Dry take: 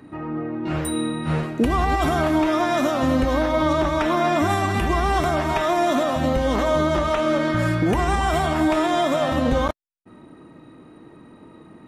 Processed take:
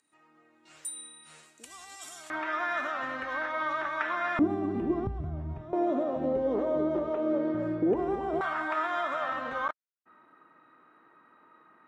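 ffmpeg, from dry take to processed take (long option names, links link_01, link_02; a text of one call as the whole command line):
ffmpeg -i in.wav -af "asetnsamples=nb_out_samples=441:pad=0,asendcmd='2.3 bandpass f 1600;4.39 bandpass f 300;5.07 bandpass f 100;5.73 bandpass f 410;8.41 bandpass f 1400',bandpass=frequency=7800:width_type=q:width=2.8:csg=0" out.wav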